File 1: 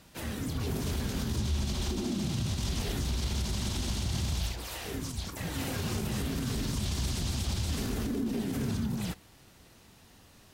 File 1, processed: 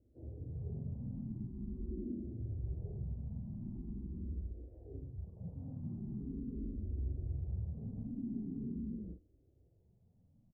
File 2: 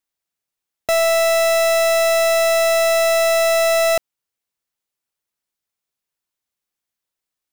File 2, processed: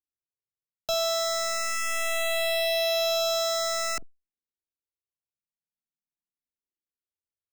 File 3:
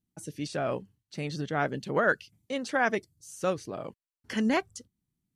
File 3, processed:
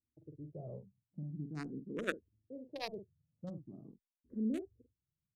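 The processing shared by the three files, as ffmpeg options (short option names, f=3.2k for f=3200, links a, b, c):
-filter_complex "[0:a]acrossover=split=450[a][b];[a]asplit=2[c][d];[d]adelay=46,volume=-7dB[e];[c][e]amix=inputs=2:normalize=0[f];[b]acrusher=bits=2:mix=0:aa=0.5[g];[f][g]amix=inputs=2:normalize=0,asplit=2[h][i];[i]afreqshift=0.43[j];[h][j]amix=inputs=2:normalize=1,volume=-6.5dB"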